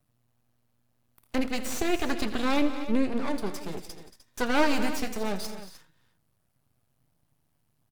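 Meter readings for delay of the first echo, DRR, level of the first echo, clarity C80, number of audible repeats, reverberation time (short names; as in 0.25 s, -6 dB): 83 ms, none, -15.5 dB, none, 4, none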